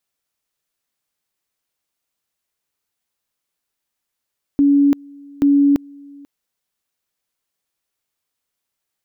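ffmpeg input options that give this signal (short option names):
-f lavfi -i "aevalsrc='pow(10,(-9.5-27*gte(mod(t,0.83),0.34))/20)*sin(2*PI*283*t)':d=1.66:s=44100"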